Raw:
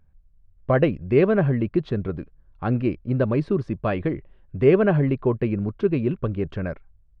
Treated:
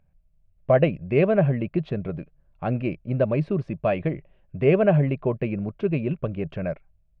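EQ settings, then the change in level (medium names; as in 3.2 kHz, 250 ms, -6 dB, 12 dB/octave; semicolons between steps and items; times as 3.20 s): fifteen-band graphic EQ 160 Hz +9 dB, 630 Hz +12 dB, 2.5 kHz +10 dB; -7.0 dB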